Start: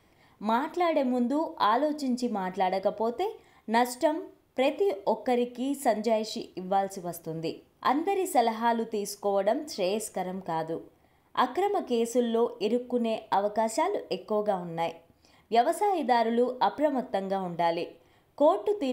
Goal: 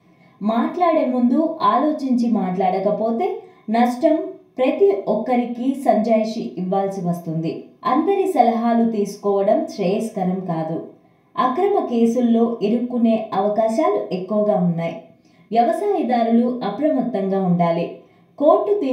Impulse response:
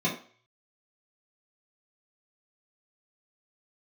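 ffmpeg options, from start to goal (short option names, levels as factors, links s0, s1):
-filter_complex "[0:a]asettb=1/sr,asplit=3[s0][s1][s2];[s0]atrim=end=14.564[s3];[s1]atrim=start=14.56:end=17.18,asetpts=PTS-STARTPTS,afade=t=in:d=0.004:c=qsin,afade=t=out:st=2.616:d=0.004:c=qsin,equalizer=f=930:t=o:w=0.38:g=-12.5[s4];[s2]atrim=start=17.176[s5];[s3][s4]acrossfade=d=0.004:c1=hsin:c2=qsin[s6];[s6][s5]acrossfade=d=0.004:c1=qsin:c2=hsin[s7];[1:a]atrim=start_sample=2205[s8];[s7][s8]afir=irnorm=-1:irlink=0,volume=0.596"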